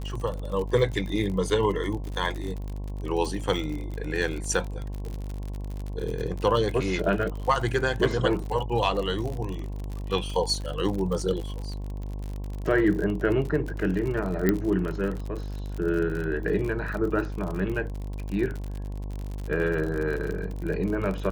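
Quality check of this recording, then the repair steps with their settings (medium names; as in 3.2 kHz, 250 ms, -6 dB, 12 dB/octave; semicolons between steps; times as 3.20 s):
buzz 50 Hz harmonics 22 -33 dBFS
crackle 53 per s -31 dBFS
14.49 s: pop -9 dBFS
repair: de-click; de-hum 50 Hz, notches 22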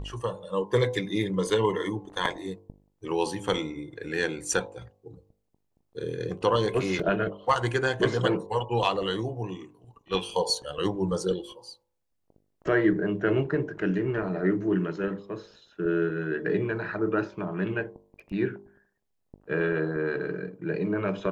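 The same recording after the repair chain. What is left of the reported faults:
nothing left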